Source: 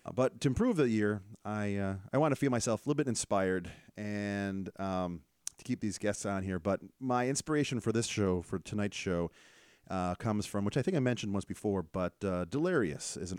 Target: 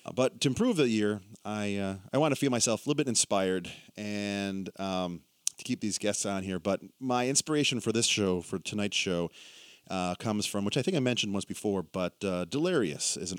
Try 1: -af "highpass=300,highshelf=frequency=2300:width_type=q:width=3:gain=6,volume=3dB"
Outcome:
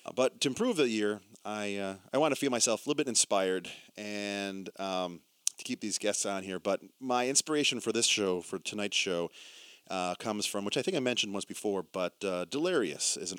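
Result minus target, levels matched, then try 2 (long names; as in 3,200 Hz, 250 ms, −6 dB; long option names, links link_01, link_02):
125 Hz band −8.5 dB
-af "highpass=130,highshelf=frequency=2300:width_type=q:width=3:gain=6,volume=3dB"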